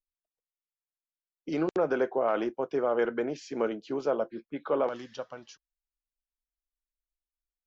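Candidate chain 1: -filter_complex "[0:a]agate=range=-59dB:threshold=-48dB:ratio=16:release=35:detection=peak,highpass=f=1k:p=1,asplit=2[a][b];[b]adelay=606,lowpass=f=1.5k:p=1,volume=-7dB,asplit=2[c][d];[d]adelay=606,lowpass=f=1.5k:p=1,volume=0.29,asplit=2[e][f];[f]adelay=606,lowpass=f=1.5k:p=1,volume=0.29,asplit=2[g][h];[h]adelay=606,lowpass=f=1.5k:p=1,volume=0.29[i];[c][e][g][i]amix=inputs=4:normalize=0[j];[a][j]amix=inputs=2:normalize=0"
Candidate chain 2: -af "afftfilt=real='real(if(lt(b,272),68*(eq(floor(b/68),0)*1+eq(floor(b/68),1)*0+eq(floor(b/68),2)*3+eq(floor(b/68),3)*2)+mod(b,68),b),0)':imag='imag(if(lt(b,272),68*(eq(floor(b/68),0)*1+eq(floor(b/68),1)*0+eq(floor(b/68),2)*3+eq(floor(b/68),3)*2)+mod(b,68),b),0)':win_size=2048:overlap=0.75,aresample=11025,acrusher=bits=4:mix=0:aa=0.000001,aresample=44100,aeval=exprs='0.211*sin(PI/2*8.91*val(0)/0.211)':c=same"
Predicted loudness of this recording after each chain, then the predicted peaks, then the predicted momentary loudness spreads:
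-36.5, -18.0 LUFS; -19.5, -13.5 dBFS; 19, 11 LU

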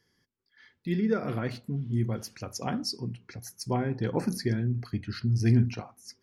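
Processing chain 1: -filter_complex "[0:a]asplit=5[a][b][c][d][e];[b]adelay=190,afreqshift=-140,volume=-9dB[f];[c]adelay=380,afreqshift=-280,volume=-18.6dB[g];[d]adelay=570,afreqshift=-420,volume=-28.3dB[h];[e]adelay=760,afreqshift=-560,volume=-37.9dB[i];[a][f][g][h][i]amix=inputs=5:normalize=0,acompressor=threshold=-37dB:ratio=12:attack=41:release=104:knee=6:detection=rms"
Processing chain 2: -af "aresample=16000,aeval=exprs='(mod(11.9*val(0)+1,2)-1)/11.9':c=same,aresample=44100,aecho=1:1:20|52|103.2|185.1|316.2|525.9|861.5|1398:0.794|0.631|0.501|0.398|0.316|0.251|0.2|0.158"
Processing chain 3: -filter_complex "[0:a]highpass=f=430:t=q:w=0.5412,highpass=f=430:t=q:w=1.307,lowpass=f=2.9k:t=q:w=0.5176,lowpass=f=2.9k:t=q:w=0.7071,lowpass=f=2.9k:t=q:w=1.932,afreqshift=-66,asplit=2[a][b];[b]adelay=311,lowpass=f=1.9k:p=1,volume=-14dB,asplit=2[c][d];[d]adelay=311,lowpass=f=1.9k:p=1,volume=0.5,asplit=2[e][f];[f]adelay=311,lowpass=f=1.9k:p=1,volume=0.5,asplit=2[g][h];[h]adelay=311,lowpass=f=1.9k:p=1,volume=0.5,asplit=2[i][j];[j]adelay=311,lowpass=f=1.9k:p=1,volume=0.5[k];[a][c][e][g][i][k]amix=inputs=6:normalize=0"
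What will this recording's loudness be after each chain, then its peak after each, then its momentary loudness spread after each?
-40.0, -27.0, -39.5 LUFS; -24.5, -11.5, -18.0 dBFS; 5, 9, 15 LU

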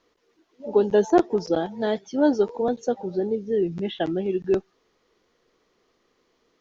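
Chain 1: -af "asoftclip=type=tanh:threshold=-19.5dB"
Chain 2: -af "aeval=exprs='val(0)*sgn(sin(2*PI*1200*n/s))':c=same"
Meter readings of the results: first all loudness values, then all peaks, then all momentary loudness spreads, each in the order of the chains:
-28.0, -22.0 LUFS; -19.5, -6.0 dBFS; 4, 7 LU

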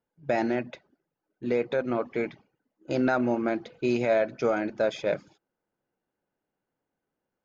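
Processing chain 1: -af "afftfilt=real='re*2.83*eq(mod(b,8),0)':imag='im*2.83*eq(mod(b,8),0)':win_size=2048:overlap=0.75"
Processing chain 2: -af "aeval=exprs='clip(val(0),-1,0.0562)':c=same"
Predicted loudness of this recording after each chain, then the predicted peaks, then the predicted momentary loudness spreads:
-31.0, -29.5 LUFS; -15.0, -15.0 dBFS; 11, 8 LU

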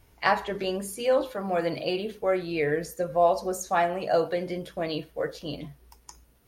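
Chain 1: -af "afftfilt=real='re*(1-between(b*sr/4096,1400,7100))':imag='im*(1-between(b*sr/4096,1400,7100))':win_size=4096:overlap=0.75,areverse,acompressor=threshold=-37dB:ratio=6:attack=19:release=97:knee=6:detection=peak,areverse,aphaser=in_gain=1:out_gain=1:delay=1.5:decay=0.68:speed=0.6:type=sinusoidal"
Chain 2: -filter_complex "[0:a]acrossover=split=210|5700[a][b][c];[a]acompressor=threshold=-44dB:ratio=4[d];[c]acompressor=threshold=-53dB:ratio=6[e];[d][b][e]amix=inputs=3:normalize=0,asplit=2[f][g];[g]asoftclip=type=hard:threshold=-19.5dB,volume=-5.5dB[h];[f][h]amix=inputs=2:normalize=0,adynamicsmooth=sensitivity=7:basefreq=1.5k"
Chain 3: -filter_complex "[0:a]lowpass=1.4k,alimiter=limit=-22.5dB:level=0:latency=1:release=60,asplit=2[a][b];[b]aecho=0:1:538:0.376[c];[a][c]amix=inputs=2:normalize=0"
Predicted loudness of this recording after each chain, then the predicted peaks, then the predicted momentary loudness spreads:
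-34.5, -24.5, -32.0 LUFS; -17.0, -6.5, -20.0 dBFS; 14, 9, 6 LU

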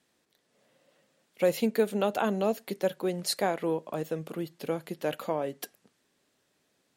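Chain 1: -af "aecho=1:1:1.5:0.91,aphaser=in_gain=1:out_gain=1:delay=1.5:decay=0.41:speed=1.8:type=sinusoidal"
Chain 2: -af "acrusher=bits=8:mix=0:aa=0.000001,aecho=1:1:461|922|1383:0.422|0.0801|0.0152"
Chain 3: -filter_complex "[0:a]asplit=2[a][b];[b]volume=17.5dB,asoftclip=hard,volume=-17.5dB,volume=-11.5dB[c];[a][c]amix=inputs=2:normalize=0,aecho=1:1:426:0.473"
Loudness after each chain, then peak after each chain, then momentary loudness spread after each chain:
-27.5, -30.0, -28.0 LUFS; -7.5, -13.5, -11.0 dBFS; 11, 11, 10 LU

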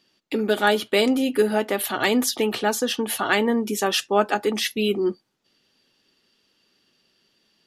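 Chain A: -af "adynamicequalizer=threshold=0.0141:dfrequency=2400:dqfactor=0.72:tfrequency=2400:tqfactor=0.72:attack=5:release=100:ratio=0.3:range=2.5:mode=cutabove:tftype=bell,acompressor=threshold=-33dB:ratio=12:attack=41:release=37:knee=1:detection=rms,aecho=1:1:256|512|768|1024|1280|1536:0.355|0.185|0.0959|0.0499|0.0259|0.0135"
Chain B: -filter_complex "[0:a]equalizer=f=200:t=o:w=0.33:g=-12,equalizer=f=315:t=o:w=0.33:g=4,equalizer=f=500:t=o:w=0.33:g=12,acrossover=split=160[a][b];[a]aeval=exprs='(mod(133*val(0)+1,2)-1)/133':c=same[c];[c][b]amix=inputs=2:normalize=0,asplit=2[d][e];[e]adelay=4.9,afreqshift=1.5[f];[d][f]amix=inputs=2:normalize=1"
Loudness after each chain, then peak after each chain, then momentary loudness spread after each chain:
-32.0, -22.5 LUFS; -16.0, -6.0 dBFS; 8, 7 LU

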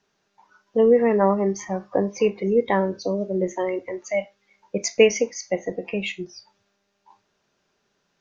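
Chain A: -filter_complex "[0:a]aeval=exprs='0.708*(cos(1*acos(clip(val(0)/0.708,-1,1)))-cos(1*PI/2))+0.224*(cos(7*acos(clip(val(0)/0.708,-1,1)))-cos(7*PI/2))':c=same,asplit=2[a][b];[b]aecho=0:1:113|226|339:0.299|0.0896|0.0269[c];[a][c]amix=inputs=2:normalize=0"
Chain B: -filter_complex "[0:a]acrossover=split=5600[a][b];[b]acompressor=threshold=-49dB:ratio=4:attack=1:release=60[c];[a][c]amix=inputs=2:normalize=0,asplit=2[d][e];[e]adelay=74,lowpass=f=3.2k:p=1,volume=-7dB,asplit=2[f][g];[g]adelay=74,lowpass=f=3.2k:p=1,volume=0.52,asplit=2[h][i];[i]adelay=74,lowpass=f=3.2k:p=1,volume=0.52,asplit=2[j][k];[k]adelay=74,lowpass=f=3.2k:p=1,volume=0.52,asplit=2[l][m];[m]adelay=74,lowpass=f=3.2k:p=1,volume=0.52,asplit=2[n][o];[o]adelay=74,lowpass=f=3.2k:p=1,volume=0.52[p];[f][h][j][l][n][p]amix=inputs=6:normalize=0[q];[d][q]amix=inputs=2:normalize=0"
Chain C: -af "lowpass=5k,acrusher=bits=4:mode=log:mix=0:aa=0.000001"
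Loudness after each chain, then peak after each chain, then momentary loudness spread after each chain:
-23.0, -22.0, -23.0 LUFS; -3.0, -3.5, -5.0 dBFS; 13, 13, 12 LU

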